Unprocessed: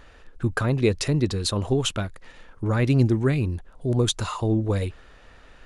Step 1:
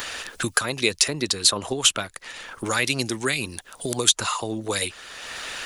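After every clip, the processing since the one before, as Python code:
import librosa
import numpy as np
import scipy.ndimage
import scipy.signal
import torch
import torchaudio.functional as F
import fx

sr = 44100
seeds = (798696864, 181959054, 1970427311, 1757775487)

y = fx.tilt_eq(x, sr, slope=4.0)
y = fx.hpss(y, sr, part='percussive', gain_db=6)
y = fx.band_squash(y, sr, depth_pct=70)
y = y * 10.0 ** (-2.0 / 20.0)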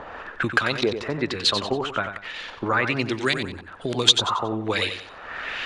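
y = fx.filter_lfo_lowpass(x, sr, shape='saw_up', hz=1.2, low_hz=770.0, high_hz=4700.0, q=1.5)
y = fx.echo_feedback(y, sr, ms=92, feedback_pct=34, wet_db=-8.5)
y = y * 10.0 ** (1.0 / 20.0)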